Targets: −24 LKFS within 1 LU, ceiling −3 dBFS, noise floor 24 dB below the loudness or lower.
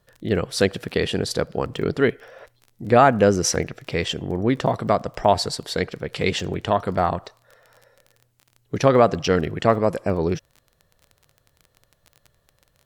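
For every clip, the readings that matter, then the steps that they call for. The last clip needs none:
crackle rate 21 per second; integrated loudness −22.0 LKFS; sample peak −2.5 dBFS; target loudness −24.0 LKFS
→ click removal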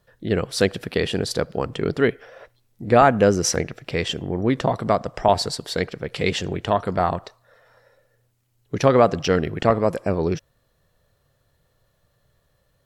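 crackle rate 0 per second; integrated loudness −22.0 LKFS; sample peak −2.5 dBFS; target loudness −24.0 LKFS
→ level −2 dB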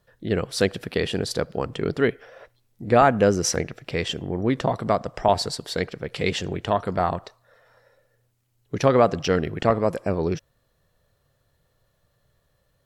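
integrated loudness −24.0 LKFS; sample peak −4.5 dBFS; background noise floor −69 dBFS

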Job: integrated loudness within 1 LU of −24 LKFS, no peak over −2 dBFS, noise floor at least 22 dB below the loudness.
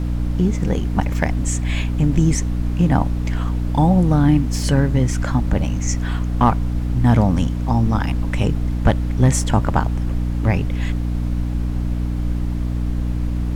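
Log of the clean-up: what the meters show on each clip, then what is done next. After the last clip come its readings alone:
mains hum 60 Hz; hum harmonics up to 300 Hz; level of the hum −19 dBFS; background noise floor −22 dBFS; target noise floor −42 dBFS; integrated loudness −20.0 LKFS; sample peak −3.0 dBFS; target loudness −24.0 LKFS
→ hum removal 60 Hz, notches 5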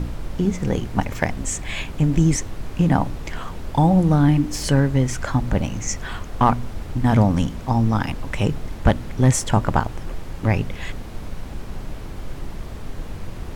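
mains hum none found; background noise floor −34 dBFS; target noise floor −43 dBFS
→ noise reduction from a noise print 9 dB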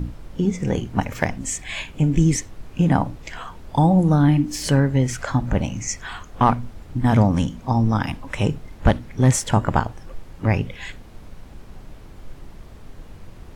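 background noise floor −42 dBFS; target noise floor −44 dBFS
→ noise reduction from a noise print 6 dB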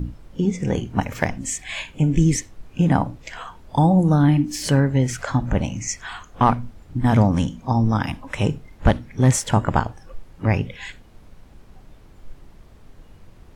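background noise floor −48 dBFS; integrated loudness −21.5 LKFS; sample peak −4.0 dBFS; target loudness −24.0 LKFS
→ level −2.5 dB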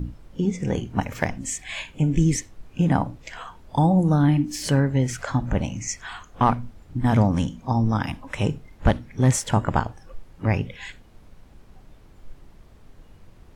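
integrated loudness −24.0 LKFS; sample peak −6.5 dBFS; background noise floor −51 dBFS

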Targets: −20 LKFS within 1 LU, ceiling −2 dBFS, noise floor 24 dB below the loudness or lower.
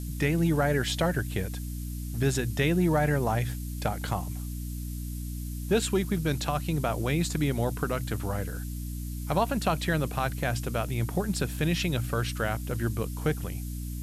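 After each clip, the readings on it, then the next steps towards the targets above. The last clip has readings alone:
mains hum 60 Hz; hum harmonics up to 300 Hz; level of the hum −32 dBFS; background noise floor −35 dBFS; target noise floor −54 dBFS; integrated loudness −29.5 LKFS; sample peak −12.5 dBFS; target loudness −20.0 LKFS
→ hum removal 60 Hz, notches 5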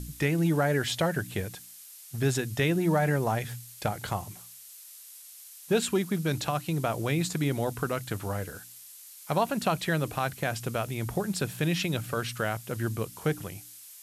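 mains hum none found; background noise floor −49 dBFS; target noise floor −54 dBFS
→ noise reduction from a noise print 6 dB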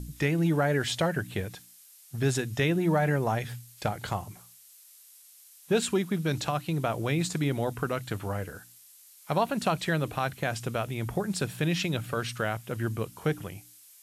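background noise floor −55 dBFS; integrated loudness −29.5 LKFS; sample peak −13.0 dBFS; target loudness −20.0 LKFS
→ level +9.5 dB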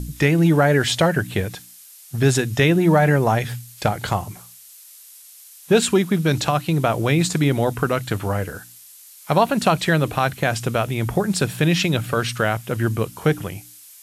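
integrated loudness −20.0 LKFS; sample peak −3.5 dBFS; background noise floor −45 dBFS

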